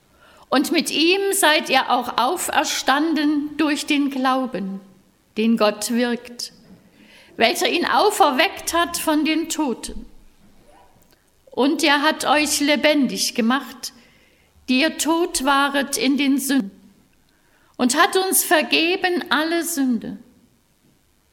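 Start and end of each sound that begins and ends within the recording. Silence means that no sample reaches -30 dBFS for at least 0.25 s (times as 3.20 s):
0.52–4.78 s
5.37–6.47 s
7.39–10.03 s
11.54–13.89 s
14.68–16.68 s
17.80–20.16 s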